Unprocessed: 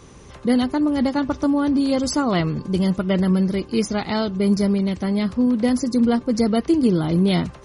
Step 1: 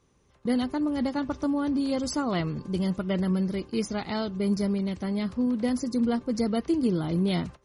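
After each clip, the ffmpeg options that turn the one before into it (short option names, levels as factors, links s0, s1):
-af "agate=range=0.2:threshold=0.0251:ratio=16:detection=peak,volume=0.422"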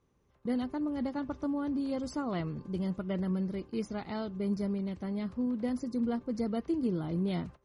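-af "highshelf=f=2900:g=-9.5,volume=0.501"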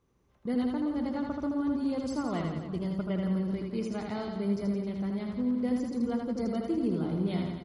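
-af "aecho=1:1:80|168|264.8|371.3|488.4:0.631|0.398|0.251|0.158|0.1"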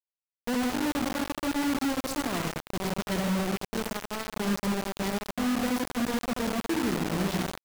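-af "acrusher=bits=4:mix=0:aa=0.000001"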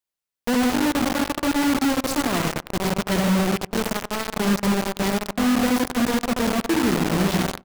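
-filter_complex "[0:a]asplit=2[s0][s1];[s1]adelay=96,lowpass=f=1500:p=1,volume=0.0794,asplit=2[s2][s3];[s3]adelay=96,lowpass=f=1500:p=1,volume=0.49,asplit=2[s4][s5];[s5]adelay=96,lowpass=f=1500:p=1,volume=0.49[s6];[s0][s2][s4][s6]amix=inputs=4:normalize=0,volume=2.37"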